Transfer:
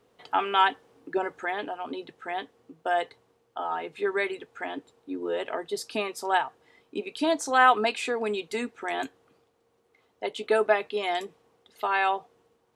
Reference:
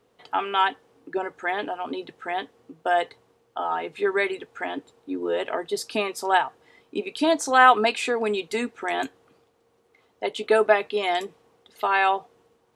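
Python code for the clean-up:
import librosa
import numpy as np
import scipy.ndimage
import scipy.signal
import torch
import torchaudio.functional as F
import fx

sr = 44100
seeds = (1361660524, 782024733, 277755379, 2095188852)

y = fx.fix_level(x, sr, at_s=1.45, step_db=4.0)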